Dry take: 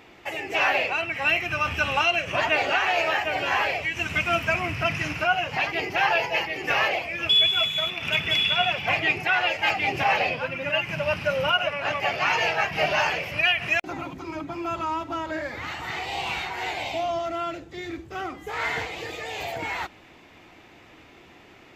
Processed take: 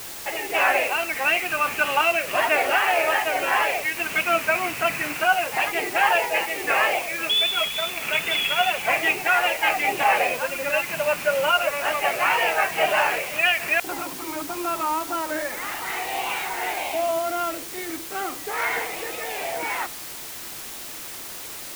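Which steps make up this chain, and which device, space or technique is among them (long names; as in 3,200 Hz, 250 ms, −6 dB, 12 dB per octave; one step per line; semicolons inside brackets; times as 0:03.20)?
wax cylinder (band-pass filter 310–2,600 Hz; tape wow and flutter; white noise bed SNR 12 dB)
level +3.5 dB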